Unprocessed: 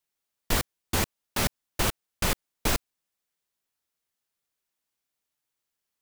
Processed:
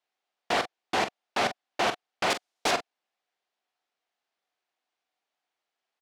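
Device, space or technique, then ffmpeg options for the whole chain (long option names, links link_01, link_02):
intercom: -filter_complex "[0:a]asettb=1/sr,asplit=3[link_01][link_02][link_03];[link_01]atrim=end=2.304[link_04];[link_02]atrim=start=2.3:end=2.71,asetpts=PTS-STARTPTS,afade=type=in:duration=0.004:curve=qsin,afade=type=out:start_time=0.406:duration=0.004:curve=qsin,bass=frequency=250:gain=-1,treble=frequency=4000:gain=10[link_05];[link_03]atrim=start=2.706[link_06];[link_04][link_05]acrossfade=duration=0.004:curve1=hsin:curve2=qsin[link_07];[link_07][link_06]acrossfade=duration=0.004:curve1=qsin:curve2=hsin,highpass=330,lowpass=3800,equalizer=frequency=730:width_type=o:width=0.27:gain=10,asoftclip=type=tanh:threshold=-21dB,asplit=2[link_08][link_09];[link_09]adelay=43,volume=-10dB[link_10];[link_08][link_10]amix=inputs=2:normalize=0,volume=4dB"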